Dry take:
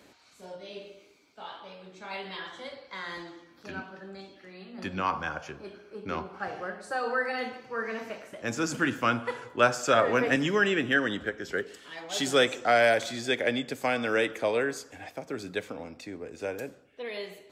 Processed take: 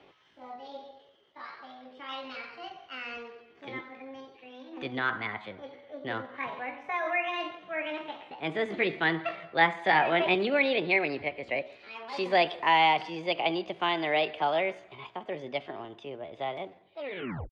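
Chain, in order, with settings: tape stop on the ending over 0.54 s; Chebyshev low-pass 2.4 kHz, order 3; pitch shift +5.5 st

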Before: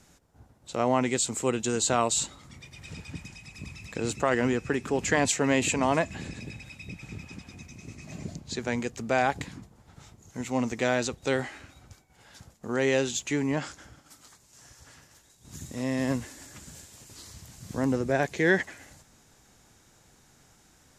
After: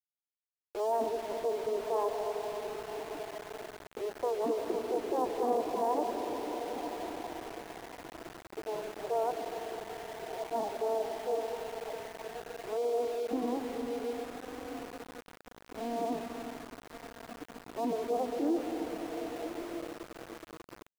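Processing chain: Chebyshev band-pass 190–1000 Hz, order 4; echo that smears into a reverb 1185 ms, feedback 44%, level -8.5 dB; formant-preserving pitch shift +10 st; on a send at -4 dB: reverberation RT60 5.1 s, pre-delay 95 ms; on the sum: small samples zeroed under -36 dBFS; trim -5 dB

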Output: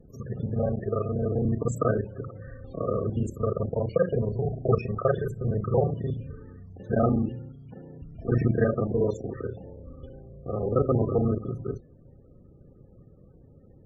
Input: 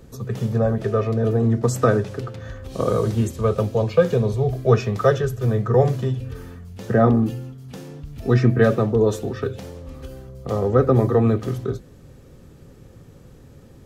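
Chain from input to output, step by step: time reversed locally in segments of 33 ms; loudest bins only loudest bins 32; trim -6.5 dB

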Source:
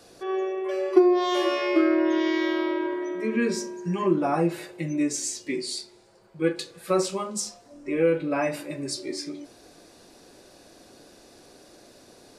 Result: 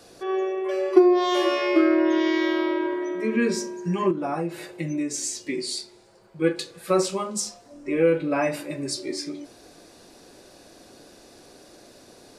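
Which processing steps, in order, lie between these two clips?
4.10–5.58 s: compression 6:1, threshold -26 dBFS, peak gain reduction 9.5 dB; trim +2 dB

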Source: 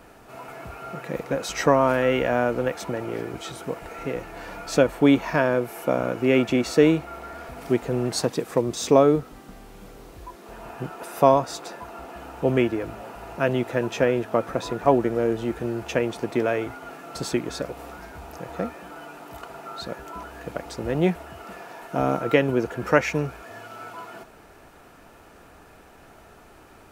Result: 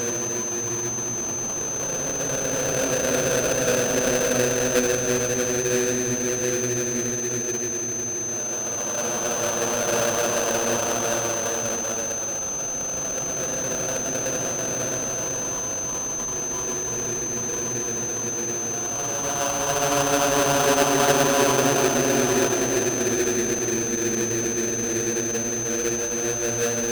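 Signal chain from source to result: Paulstretch 20×, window 0.25 s, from 13.85 s; sample-rate reducer 2.1 kHz, jitter 20%; whistle 6.2 kHz -23 dBFS; trim -3 dB

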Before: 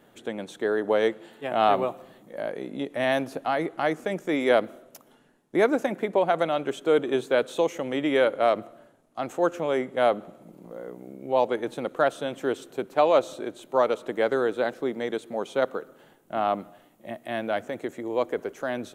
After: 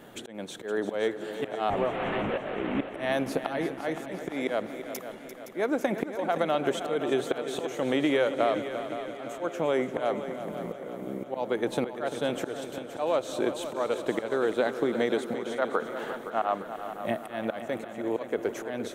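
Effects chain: 1.70–2.88 s: one-bit delta coder 16 kbps, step -32.5 dBFS; 15.58–16.58 s: peaking EQ 1.2 kHz +12 dB 2.9 oct; slow attack 475 ms; compression 5:1, threshold -31 dBFS, peak gain reduction 13.5 dB; multi-head delay 172 ms, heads second and third, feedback 59%, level -11.5 dB; trim +8 dB

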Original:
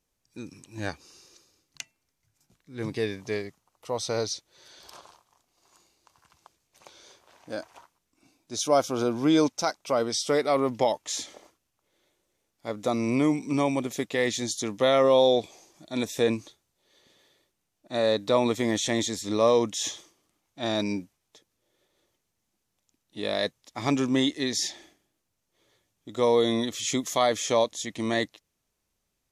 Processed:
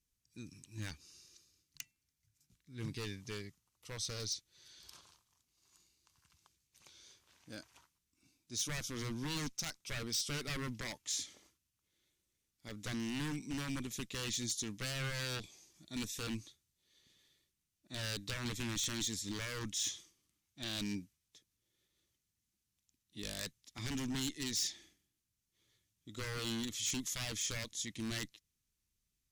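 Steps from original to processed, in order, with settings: Chebyshev shaper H 3 -19 dB, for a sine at -9 dBFS; peak limiter -16 dBFS, peak gain reduction 7 dB; wavefolder -26.5 dBFS; amplifier tone stack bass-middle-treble 6-0-2; trim +13 dB

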